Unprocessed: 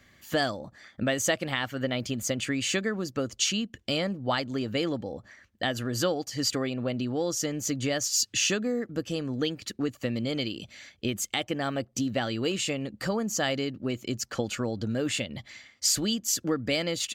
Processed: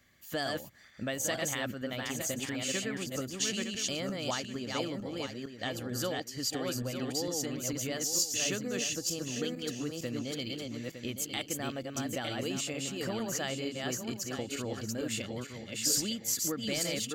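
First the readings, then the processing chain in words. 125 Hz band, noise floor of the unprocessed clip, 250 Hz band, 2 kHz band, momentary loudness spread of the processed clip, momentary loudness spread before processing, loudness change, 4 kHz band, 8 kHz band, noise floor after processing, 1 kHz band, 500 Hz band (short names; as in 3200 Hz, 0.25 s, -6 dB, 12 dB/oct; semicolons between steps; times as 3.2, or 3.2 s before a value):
-6.0 dB, -63 dBFS, -6.0 dB, -5.5 dB, 7 LU, 7 LU, -4.5 dB, -4.5 dB, -2.0 dB, -48 dBFS, -6.0 dB, -6.0 dB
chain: regenerating reverse delay 0.455 s, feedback 45%, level -2 dB; high shelf 8500 Hz +11 dB; gain -8.5 dB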